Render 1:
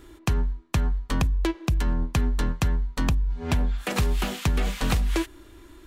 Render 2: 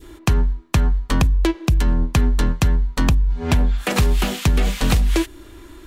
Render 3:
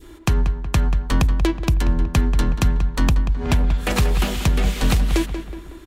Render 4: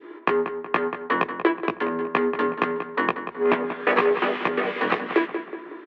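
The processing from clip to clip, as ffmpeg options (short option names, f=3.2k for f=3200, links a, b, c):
-af "adynamicequalizer=threshold=0.00631:dfrequency=1200:dqfactor=0.79:tfrequency=1200:tqfactor=0.79:attack=5:release=100:ratio=0.375:range=2:mode=cutabove:tftype=bell,acontrast=88"
-filter_complex "[0:a]asplit=2[a][b];[b]adelay=185,lowpass=f=2.7k:p=1,volume=-9dB,asplit=2[c][d];[d]adelay=185,lowpass=f=2.7k:p=1,volume=0.5,asplit=2[e][f];[f]adelay=185,lowpass=f=2.7k:p=1,volume=0.5,asplit=2[g][h];[h]adelay=185,lowpass=f=2.7k:p=1,volume=0.5,asplit=2[i][j];[j]adelay=185,lowpass=f=2.7k:p=1,volume=0.5,asplit=2[k][l];[l]adelay=185,lowpass=f=2.7k:p=1,volume=0.5[m];[a][c][e][g][i][k][m]amix=inputs=7:normalize=0,volume=-1.5dB"
-filter_complex "[0:a]highpass=f=270:w=0.5412,highpass=f=270:w=1.3066,equalizer=f=430:t=q:w=4:g=9,equalizer=f=1.1k:t=q:w=4:g=8,equalizer=f=1.8k:t=q:w=4:g=6,lowpass=f=2.6k:w=0.5412,lowpass=f=2.6k:w=1.3066,asplit=2[a][b];[b]adelay=17,volume=-4dB[c];[a][c]amix=inputs=2:normalize=0"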